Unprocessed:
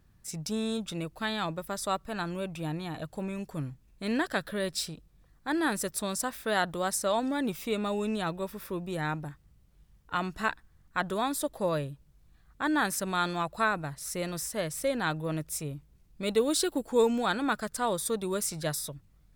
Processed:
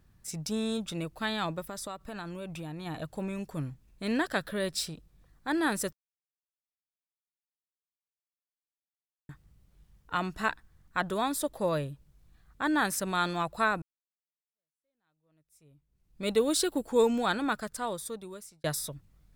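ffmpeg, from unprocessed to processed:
ffmpeg -i in.wav -filter_complex "[0:a]asplit=3[link_01][link_02][link_03];[link_01]afade=type=out:start_time=1.64:duration=0.02[link_04];[link_02]acompressor=threshold=-35dB:ratio=6:attack=3.2:release=140:knee=1:detection=peak,afade=type=in:start_time=1.64:duration=0.02,afade=type=out:start_time=2.85:duration=0.02[link_05];[link_03]afade=type=in:start_time=2.85:duration=0.02[link_06];[link_04][link_05][link_06]amix=inputs=3:normalize=0,asplit=5[link_07][link_08][link_09][link_10][link_11];[link_07]atrim=end=5.93,asetpts=PTS-STARTPTS,afade=type=out:start_time=5.926:duration=0.004:curve=hsin[link_12];[link_08]atrim=start=5.93:end=9.29,asetpts=PTS-STARTPTS,volume=0[link_13];[link_09]atrim=start=9.29:end=13.82,asetpts=PTS-STARTPTS,afade=type=in:duration=0.004:curve=hsin,afade=type=out:start_time=4.526:duration=0.004:curve=hsin[link_14];[link_10]atrim=start=13.82:end=18.64,asetpts=PTS-STARTPTS,afade=type=in:duration=2.44:curve=exp,afade=type=out:start_time=3.5:duration=1.32[link_15];[link_11]atrim=start=18.64,asetpts=PTS-STARTPTS,afade=type=in:duration=0.004:curve=hsin[link_16];[link_12][link_13][link_14][link_15][link_16]concat=n=5:v=0:a=1" out.wav

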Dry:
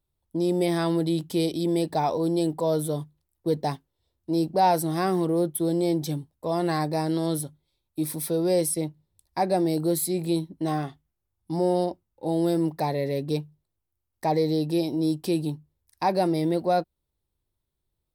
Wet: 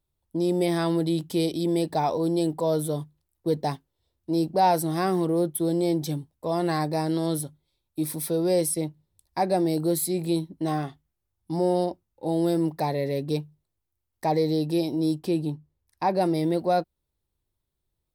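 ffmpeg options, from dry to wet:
ffmpeg -i in.wav -filter_complex "[0:a]asettb=1/sr,asplit=3[link_01][link_02][link_03];[link_01]atrim=end=15.194[link_04];[link_02]atrim=start=15.19:end=16.21,asetpts=PTS-STARTPTS,afade=type=in:duration=0.004:curve=qsin,afade=type=out:start_time=1.016:duration=0.004:curve=qsin,highshelf=frequency=3400:gain=-8[link_05];[link_03]atrim=start=16.206[link_06];[link_04][link_05]acrossfade=duration=0.004:curve1=hsin:curve2=qsin[link_07];[link_07][link_06]acrossfade=duration=0.004:curve1=qsin:curve2=hsin" out.wav

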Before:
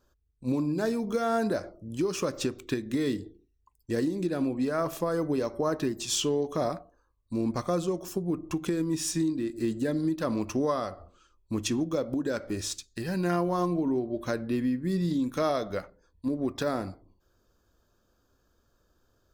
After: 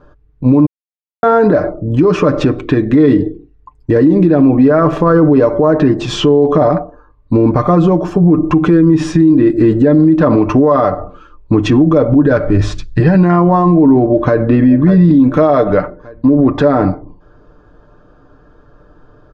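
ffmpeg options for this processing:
ffmpeg -i in.wav -filter_complex "[0:a]asettb=1/sr,asplit=3[link_01][link_02][link_03];[link_01]atrim=end=11.774[link_04];[link_02]atrim=start=11.77:end=13,asetpts=PTS-STARTPTS,afade=type=in:duration=0.004:curve=qsin,afade=type=out:start_time=1.226:duration=0.004:curve=qsin,asubboost=boost=11:cutoff=140[link_05];[link_03]atrim=start=12.996[link_06];[link_04][link_05]acrossfade=duration=0.004:curve1=hsin:curve2=qsin[link_07];[link_07][link_06]acrossfade=duration=0.004:curve1=qsin:curve2=hsin,asplit=2[link_08][link_09];[link_09]afade=type=in:start_time=14.03:duration=0.01,afade=type=out:start_time=14.52:duration=0.01,aecho=0:1:590|1180|1770|2360:0.251189|0.087916|0.0307706|0.0107697[link_10];[link_08][link_10]amix=inputs=2:normalize=0,asplit=3[link_11][link_12][link_13];[link_11]atrim=end=0.66,asetpts=PTS-STARTPTS,afade=type=out:start_time=0.656:duration=0.004:curve=hsin[link_14];[link_12]atrim=start=0.66:end=1.23,asetpts=PTS-STARTPTS,volume=0[link_15];[link_13]atrim=start=1.23,asetpts=PTS-STARTPTS,afade=type=in:duration=0.004:curve=hsin[link_16];[link_14][link_15][link_16]concat=n=3:v=0:a=1,lowpass=1500,aecho=1:1:6.7:0.58,alimiter=level_in=25.5dB:limit=-1dB:release=50:level=0:latency=1,volume=-1dB" out.wav

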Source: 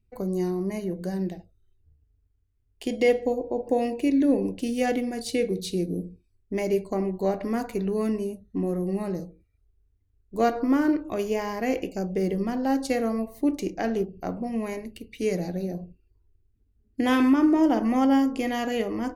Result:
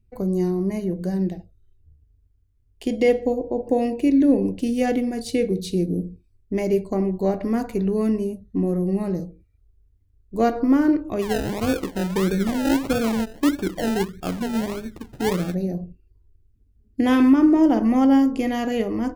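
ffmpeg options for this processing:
ffmpeg -i in.wav -filter_complex "[0:a]asplit=3[link_01][link_02][link_03];[link_01]afade=type=out:start_time=11.21:duration=0.02[link_04];[link_02]acrusher=samples=31:mix=1:aa=0.000001:lfo=1:lforange=18.6:lforate=1.6,afade=type=in:start_time=11.21:duration=0.02,afade=type=out:start_time=15.53:duration=0.02[link_05];[link_03]afade=type=in:start_time=15.53:duration=0.02[link_06];[link_04][link_05][link_06]amix=inputs=3:normalize=0,lowshelf=frequency=370:gain=7.5" out.wav

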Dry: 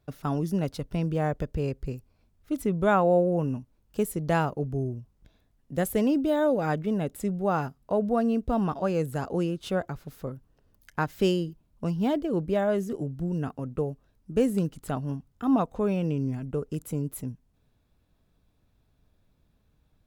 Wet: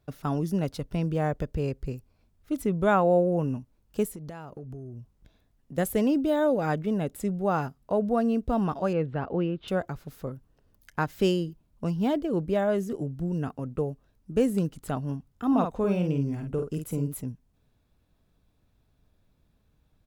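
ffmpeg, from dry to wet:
ffmpeg -i in.wav -filter_complex "[0:a]asettb=1/sr,asplit=3[link_01][link_02][link_03];[link_01]atrim=end=4.074[link_04];[link_02]atrim=start=4.07:end=5.78,asetpts=PTS-STARTPTS,afade=type=in:duration=0.004:curve=qsin,afade=type=out:start_time=1.706:duration=0.004:curve=qsin,acompressor=threshold=-36dB:ratio=12:attack=3.2:release=140:knee=1:detection=peak[link_05];[link_03]atrim=start=5.776[link_06];[link_04][link_05]acrossfade=duration=0.004:curve1=hsin:curve2=qsin[link_07];[link_07][link_06]acrossfade=duration=0.004:curve1=qsin:curve2=hsin,asettb=1/sr,asplit=3[link_08][link_09][link_10];[link_08]atrim=end=8.934[link_11];[link_09]atrim=start=8.93:end=9.68,asetpts=PTS-STARTPTS,afade=type=in:duration=0.004:curve=qsin,afade=type=out:start_time=0.746:duration=0.004:curve=qsin,lowpass=frequency=3200:width=0.5412,lowpass=frequency=3200:width=1.3066[link_12];[link_10]atrim=start=9.676[link_13];[link_11][link_12]acrossfade=duration=0.004:curve1=hsin:curve2=qsin[link_14];[link_14][link_13]acrossfade=duration=0.004:curve1=qsin:curve2=hsin,asplit=3[link_15][link_16][link_17];[link_15]afade=type=out:start_time=15.51:duration=0.02[link_18];[link_16]asplit=2[link_19][link_20];[link_20]adelay=50,volume=-6dB[link_21];[link_19][link_21]amix=inputs=2:normalize=0,afade=type=in:start_time=15.51:duration=0.02,afade=type=out:start_time=17.15:duration=0.02[link_22];[link_17]afade=type=in:start_time=17.15:duration=0.02[link_23];[link_18][link_22][link_23]amix=inputs=3:normalize=0" out.wav

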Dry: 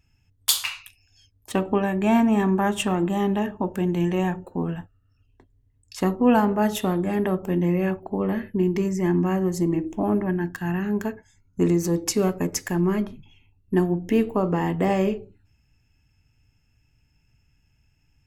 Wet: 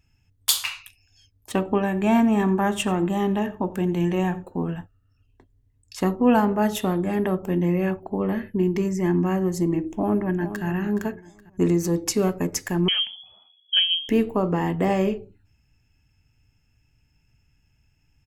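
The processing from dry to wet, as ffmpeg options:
ffmpeg -i in.wav -filter_complex "[0:a]asettb=1/sr,asplit=3[link_01][link_02][link_03];[link_01]atrim=end=1.784[link_04];[link_02]atrim=start=1.78:end=4.69,asetpts=PTS-STARTPTS,afade=type=in:duration=0.004:curve=qsin,afade=type=out:start_time=2.906:duration=0.004:curve=qsin,aecho=1:1:87:0.106,atrim=end_sample=128331[link_05];[link_03]atrim=start=4.686[link_06];[link_04][link_05]acrossfade=duration=0.004:curve1=hsin:curve2=qsin[link_07];[link_07][link_06]acrossfade=duration=0.004:curve1=qsin:curve2=hsin,asplit=2[link_08][link_09];[link_09]afade=type=in:start_time=9.85:duration=0.01,afade=type=out:start_time=10.65:duration=0.01,aecho=0:1:420|840|1260:0.266073|0.0798218|0.0239465[link_10];[link_08][link_10]amix=inputs=2:normalize=0,asettb=1/sr,asplit=3[link_11][link_12][link_13];[link_11]atrim=end=12.884[link_14];[link_12]atrim=start=12.88:end=14.09,asetpts=PTS-STARTPTS,afade=type=in:duration=0.004:curve=qsin,afade=type=out:start_time=1.206:duration=0.004:curve=qsin,lowpass=frequency=2900:width_type=q:width=0.5098,lowpass=frequency=2900:width_type=q:width=0.6013,lowpass=frequency=2900:width_type=q:width=0.9,lowpass=frequency=2900:width_type=q:width=2.563,afreqshift=-3400[link_15];[link_13]atrim=start=14.086[link_16];[link_14][link_15]acrossfade=duration=0.004:curve1=hsin:curve2=qsin[link_17];[link_17][link_16]acrossfade=duration=0.004:curve1=qsin:curve2=hsin" out.wav

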